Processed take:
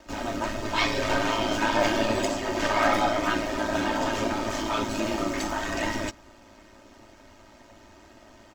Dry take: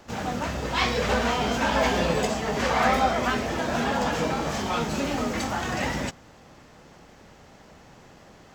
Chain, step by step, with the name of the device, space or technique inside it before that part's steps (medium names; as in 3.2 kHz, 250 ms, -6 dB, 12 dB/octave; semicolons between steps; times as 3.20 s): ring-modulated robot voice (ring modulator 54 Hz; comb 3.2 ms, depth 82%)